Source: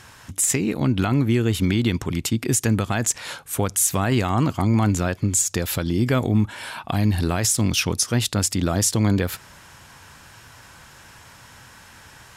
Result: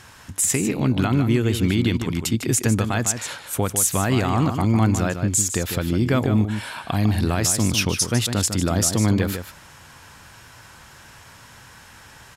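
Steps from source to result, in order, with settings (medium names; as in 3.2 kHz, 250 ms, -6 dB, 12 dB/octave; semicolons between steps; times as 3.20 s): 5.52–6.16 s: treble shelf 7.6 kHz -5 dB; echo from a far wall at 26 m, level -8 dB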